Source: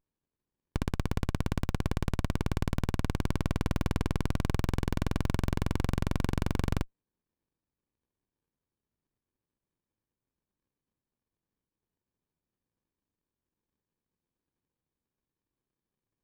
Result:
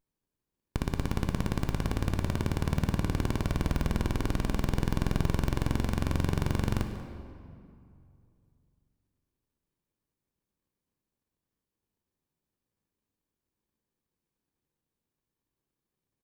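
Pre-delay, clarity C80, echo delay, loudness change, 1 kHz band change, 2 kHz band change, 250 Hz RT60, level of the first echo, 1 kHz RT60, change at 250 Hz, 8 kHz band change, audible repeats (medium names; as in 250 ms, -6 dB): 11 ms, 7.5 dB, 189 ms, +1.5 dB, +1.0 dB, +1.0 dB, 2.8 s, -17.0 dB, 2.4 s, +1.5 dB, +2.0 dB, 1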